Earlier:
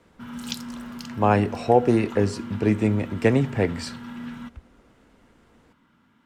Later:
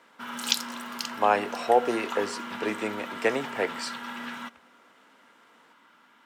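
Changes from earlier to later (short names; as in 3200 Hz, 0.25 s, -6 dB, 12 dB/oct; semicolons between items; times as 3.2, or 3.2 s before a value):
background +8.0 dB; master: add HPF 540 Hz 12 dB/oct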